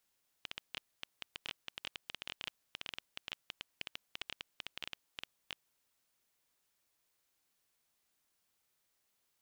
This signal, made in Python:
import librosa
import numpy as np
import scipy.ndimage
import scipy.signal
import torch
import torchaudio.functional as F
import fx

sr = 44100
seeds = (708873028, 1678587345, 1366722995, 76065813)

y = fx.geiger_clicks(sr, seeds[0], length_s=5.2, per_s=12.0, level_db=-23.0)